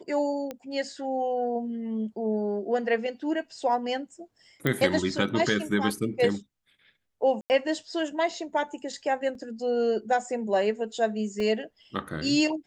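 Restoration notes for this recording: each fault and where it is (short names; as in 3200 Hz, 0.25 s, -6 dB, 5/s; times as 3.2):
0.51 pop -21 dBFS
4.67 pop -12 dBFS
7.41–7.5 gap 89 ms
9.35 gap 2.7 ms
11.4 gap 2.4 ms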